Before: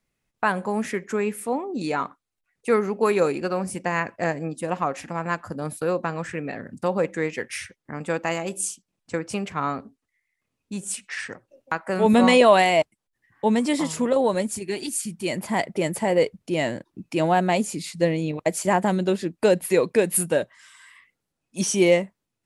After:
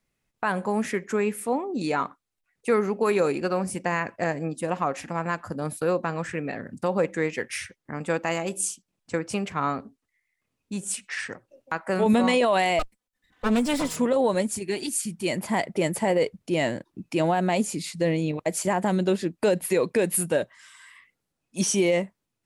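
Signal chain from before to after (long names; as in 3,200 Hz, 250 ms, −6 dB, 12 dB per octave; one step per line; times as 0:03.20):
0:12.79–0:13.96: lower of the sound and its delayed copy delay 4 ms
brickwall limiter −13 dBFS, peak gain reduction 8.5 dB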